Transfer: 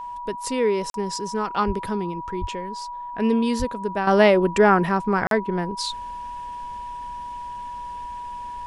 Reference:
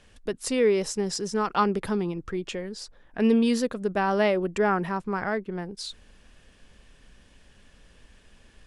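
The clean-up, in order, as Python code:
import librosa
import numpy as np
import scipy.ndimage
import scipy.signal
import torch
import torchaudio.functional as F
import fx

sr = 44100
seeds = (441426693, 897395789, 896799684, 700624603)

y = fx.notch(x, sr, hz=970.0, q=30.0)
y = fx.fix_deplosive(y, sr, at_s=(1.66, 2.4, 3.58))
y = fx.fix_interpolate(y, sr, at_s=(0.9, 5.27), length_ms=42.0)
y = fx.fix_level(y, sr, at_s=4.07, step_db=-7.5)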